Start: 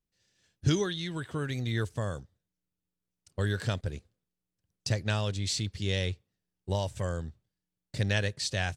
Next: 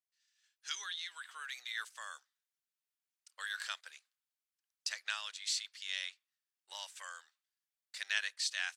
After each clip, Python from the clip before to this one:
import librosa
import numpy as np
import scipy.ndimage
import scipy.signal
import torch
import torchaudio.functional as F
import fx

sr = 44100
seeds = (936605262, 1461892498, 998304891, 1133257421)

y = fx.rider(x, sr, range_db=10, speed_s=2.0)
y = scipy.signal.sosfilt(scipy.signal.butter(4, 1200.0, 'highpass', fs=sr, output='sos'), y)
y = y * librosa.db_to_amplitude(-2.5)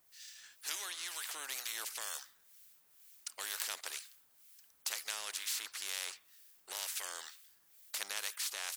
y = fx.high_shelf(x, sr, hz=9400.0, db=12.0)
y = fx.harmonic_tremolo(y, sr, hz=2.1, depth_pct=70, crossover_hz=1600.0)
y = fx.spectral_comp(y, sr, ratio=4.0)
y = y * librosa.db_to_amplitude(5.5)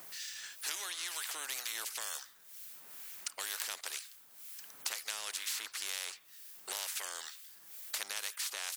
y = fx.band_squash(x, sr, depth_pct=70)
y = y * librosa.db_to_amplitude(1.0)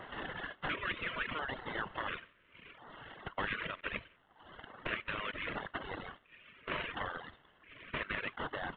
y = fx.cvsd(x, sr, bps=16000)
y = fx.filter_lfo_notch(y, sr, shape='square', hz=0.72, low_hz=800.0, high_hz=2400.0, q=2.2)
y = fx.dereverb_blind(y, sr, rt60_s=1.6)
y = y * librosa.db_to_amplitude(11.0)